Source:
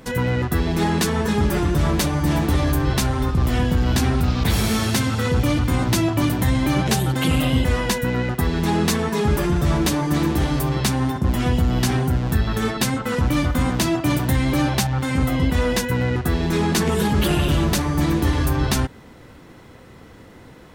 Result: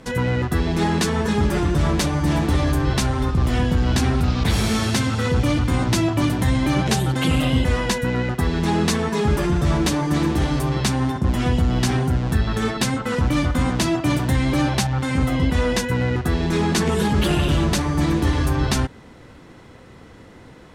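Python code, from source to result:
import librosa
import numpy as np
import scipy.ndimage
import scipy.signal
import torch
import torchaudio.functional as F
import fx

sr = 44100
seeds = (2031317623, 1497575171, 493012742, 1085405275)

y = scipy.signal.sosfilt(scipy.signal.butter(2, 9900.0, 'lowpass', fs=sr, output='sos'), x)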